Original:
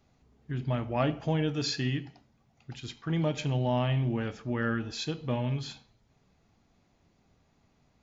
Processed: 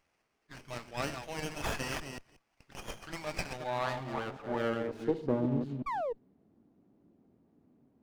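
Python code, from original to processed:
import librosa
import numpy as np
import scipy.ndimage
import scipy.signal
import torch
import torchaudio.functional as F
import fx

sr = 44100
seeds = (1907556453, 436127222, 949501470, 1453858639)

y = fx.reverse_delay(x, sr, ms=182, wet_db=-7.0)
y = fx.filter_sweep_bandpass(y, sr, from_hz=3000.0, to_hz=290.0, start_s=3.09, end_s=5.59, q=2.1)
y = fx.spec_paint(y, sr, seeds[0], shape='fall', start_s=5.86, length_s=0.27, low_hz=440.0, high_hz=1200.0, level_db=-41.0)
y = fx.running_max(y, sr, window=9)
y = y * 10.0 ** (8.0 / 20.0)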